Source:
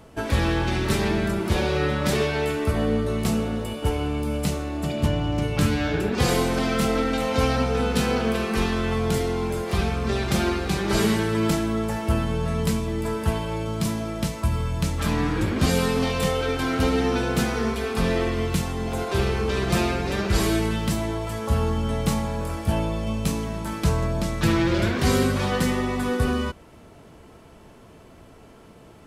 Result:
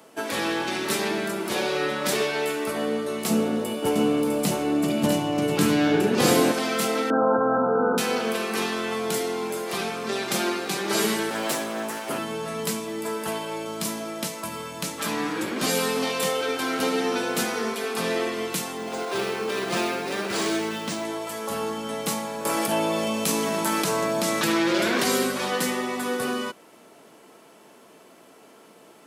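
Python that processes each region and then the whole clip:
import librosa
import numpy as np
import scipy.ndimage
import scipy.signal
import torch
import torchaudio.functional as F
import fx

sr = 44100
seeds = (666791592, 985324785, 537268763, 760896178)

y = fx.chain(x, sr, fx.low_shelf(hz=480.0, db=10.0),
    fx.echo_single(ms=654, db=-4.5), at=(3.3, 6.52))
y = fx.chain(y, sr, fx.brickwall_lowpass(high_hz=1600.0),
    fx.env_flatten(amount_pct=100), at=(7.1, 7.98))
y = fx.chain(y, sr, fx.lower_of_two(delay_ms=7.8),
    fx.highpass(hz=120.0, slope=12), at=(11.3, 12.18))
y = fx.chain(y, sr, fx.cvsd(bps=64000),
    fx.resample_linear(factor=3), at=(18.77, 21.05))
y = fx.chain(y, sr, fx.highpass(hz=110.0, slope=12),
    fx.env_flatten(amount_pct=70), at=(22.45, 25.04))
y = scipy.signal.sosfilt(scipy.signal.bessel(4, 300.0, 'highpass', norm='mag', fs=sr, output='sos'), y)
y = fx.high_shelf(y, sr, hz=6600.0, db=7.5)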